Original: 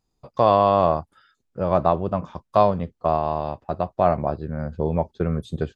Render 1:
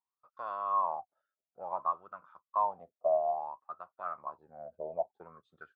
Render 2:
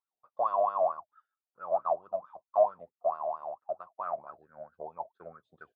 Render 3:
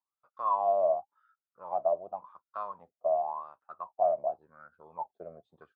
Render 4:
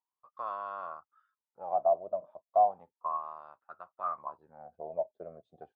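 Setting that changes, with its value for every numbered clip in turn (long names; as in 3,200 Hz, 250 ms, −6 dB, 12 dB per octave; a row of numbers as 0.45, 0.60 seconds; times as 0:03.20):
LFO wah, speed: 0.57, 4.5, 0.9, 0.34 Hertz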